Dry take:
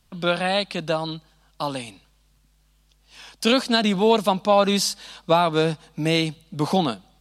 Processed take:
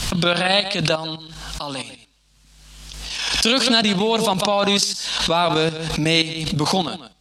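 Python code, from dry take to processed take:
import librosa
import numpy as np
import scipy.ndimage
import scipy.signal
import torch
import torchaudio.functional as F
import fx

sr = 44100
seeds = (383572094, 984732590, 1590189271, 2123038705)

p1 = x + fx.echo_single(x, sr, ms=145, db=-14.0, dry=0)
p2 = fx.level_steps(p1, sr, step_db=11)
p3 = scipy.signal.sosfilt(scipy.signal.butter(2, 8100.0, 'lowpass', fs=sr, output='sos'), p2)
p4 = fx.high_shelf(p3, sr, hz=2200.0, db=9.5)
p5 = fx.pre_swell(p4, sr, db_per_s=36.0)
y = p5 * 10.0 ** (3.0 / 20.0)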